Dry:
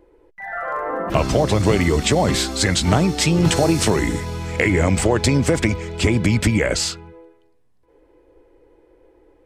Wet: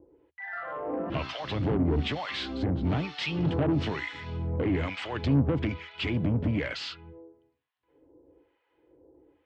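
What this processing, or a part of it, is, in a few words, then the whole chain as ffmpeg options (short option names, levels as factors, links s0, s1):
guitar amplifier with harmonic tremolo: -filter_complex "[0:a]acrossover=split=910[s0][s1];[s0]aeval=exprs='val(0)*(1-1/2+1/2*cos(2*PI*1.1*n/s))':c=same[s2];[s1]aeval=exprs='val(0)*(1-1/2-1/2*cos(2*PI*1.1*n/s))':c=same[s3];[s2][s3]amix=inputs=2:normalize=0,asoftclip=type=tanh:threshold=0.106,highpass=77,equalizer=f=77:t=q:w=4:g=9,equalizer=f=140:t=q:w=4:g=7,equalizer=f=280:t=q:w=4:g=8,equalizer=f=3000:t=q:w=4:g=5,lowpass=f=3900:w=0.5412,lowpass=f=3900:w=1.3066,volume=0.562"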